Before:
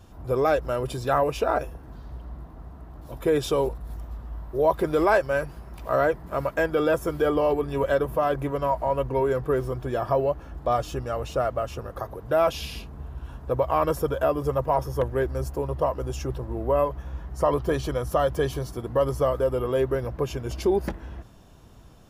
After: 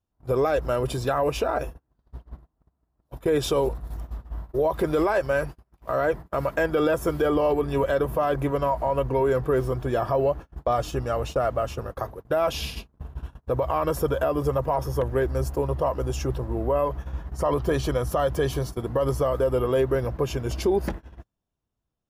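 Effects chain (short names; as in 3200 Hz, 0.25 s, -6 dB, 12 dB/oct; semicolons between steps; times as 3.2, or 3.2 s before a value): limiter -17.5 dBFS, peak gain reduction 10 dB; gate -35 dBFS, range -36 dB; gain +3 dB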